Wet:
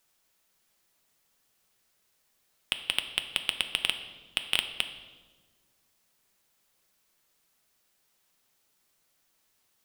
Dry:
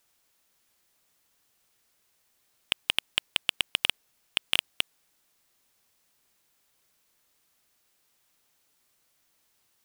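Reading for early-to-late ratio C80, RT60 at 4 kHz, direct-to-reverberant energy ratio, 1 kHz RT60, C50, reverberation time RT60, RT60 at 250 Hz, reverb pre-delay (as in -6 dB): 12.0 dB, 1.1 s, 7.0 dB, 1.2 s, 10.0 dB, 1.4 s, 1.9 s, 5 ms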